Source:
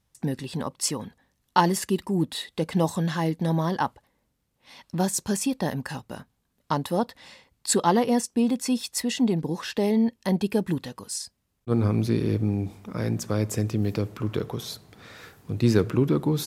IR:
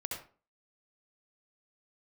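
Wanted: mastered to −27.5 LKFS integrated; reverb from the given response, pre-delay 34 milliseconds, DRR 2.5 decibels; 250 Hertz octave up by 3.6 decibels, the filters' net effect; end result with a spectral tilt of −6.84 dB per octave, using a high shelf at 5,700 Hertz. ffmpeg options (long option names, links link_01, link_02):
-filter_complex "[0:a]equalizer=frequency=250:width_type=o:gain=4.5,highshelf=frequency=5700:gain=-3,asplit=2[link_01][link_02];[1:a]atrim=start_sample=2205,adelay=34[link_03];[link_02][link_03]afir=irnorm=-1:irlink=0,volume=-3.5dB[link_04];[link_01][link_04]amix=inputs=2:normalize=0,volume=-5.5dB"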